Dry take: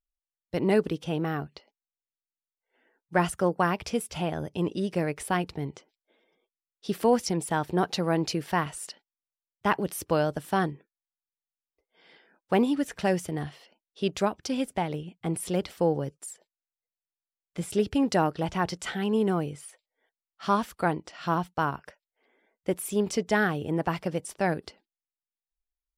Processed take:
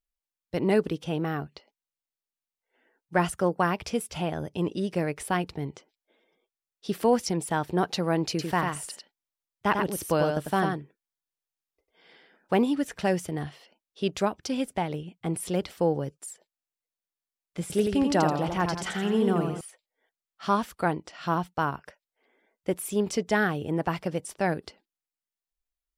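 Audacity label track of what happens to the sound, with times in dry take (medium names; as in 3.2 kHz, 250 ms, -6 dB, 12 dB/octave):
8.290000	12.590000	delay 97 ms -4.5 dB
17.610000	19.610000	modulated delay 85 ms, feedback 45%, depth 109 cents, level -5 dB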